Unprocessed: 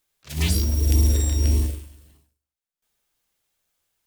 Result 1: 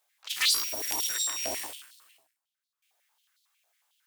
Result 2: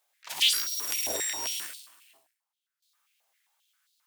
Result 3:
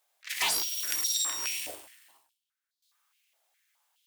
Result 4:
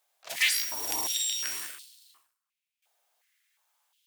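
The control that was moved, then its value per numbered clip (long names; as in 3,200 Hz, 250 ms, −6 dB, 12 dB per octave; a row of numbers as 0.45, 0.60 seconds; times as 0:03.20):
high-pass on a step sequencer, speed: 11, 7.5, 4.8, 2.8 Hertz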